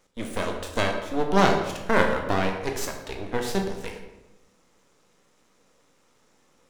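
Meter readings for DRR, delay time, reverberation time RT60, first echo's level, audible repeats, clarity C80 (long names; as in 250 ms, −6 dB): 2.0 dB, no echo audible, 1.0 s, no echo audible, no echo audible, 7.5 dB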